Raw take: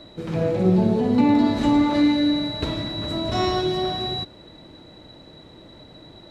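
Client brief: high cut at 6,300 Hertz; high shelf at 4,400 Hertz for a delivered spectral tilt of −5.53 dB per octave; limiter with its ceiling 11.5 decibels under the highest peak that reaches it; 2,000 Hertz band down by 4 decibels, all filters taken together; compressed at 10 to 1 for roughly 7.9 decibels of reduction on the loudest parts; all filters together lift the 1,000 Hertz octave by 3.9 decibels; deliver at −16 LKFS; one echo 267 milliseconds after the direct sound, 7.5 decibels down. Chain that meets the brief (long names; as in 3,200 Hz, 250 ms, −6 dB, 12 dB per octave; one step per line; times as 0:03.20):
low-pass filter 6,300 Hz
parametric band 1,000 Hz +6.5 dB
parametric band 2,000 Hz −6 dB
high-shelf EQ 4,400 Hz −6.5 dB
downward compressor 10 to 1, threshold −21 dBFS
brickwall limiter −23.5 dBFS
single-tap delay 267 ms −7.5 dB
level +15 dB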